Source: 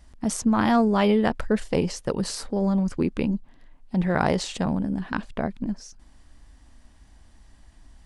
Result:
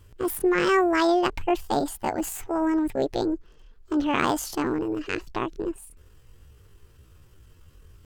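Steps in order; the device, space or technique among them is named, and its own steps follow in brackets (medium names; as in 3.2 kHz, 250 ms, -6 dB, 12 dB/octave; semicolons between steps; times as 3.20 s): chipmunk voice (pitch shift +8.5 st); trim -1 dB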